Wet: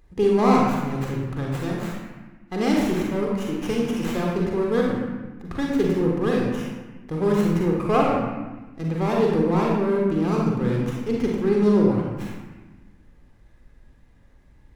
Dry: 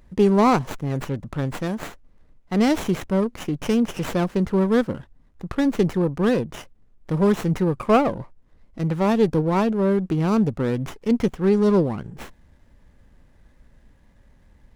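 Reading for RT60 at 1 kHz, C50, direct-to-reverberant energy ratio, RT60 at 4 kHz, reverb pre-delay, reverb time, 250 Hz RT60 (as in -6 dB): 1.2 s, -0.5 dB, -2.5 dB, 0.90 s, 37 ms, 1.2 s, 1.7 s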